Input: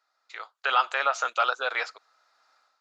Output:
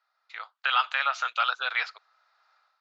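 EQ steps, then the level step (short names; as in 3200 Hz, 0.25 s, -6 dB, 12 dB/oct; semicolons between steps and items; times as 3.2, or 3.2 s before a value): three-band isolator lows -19 dB, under 580 Hz, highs -21 dB, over 4900 Hz; dynamic EQ 520 Hz, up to -7 dB, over -40 dBFS, Q 0.76; dynamic EQ 3800 Hz, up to +5 dB, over -44 dBFS, Q 0.74; 0.0 dB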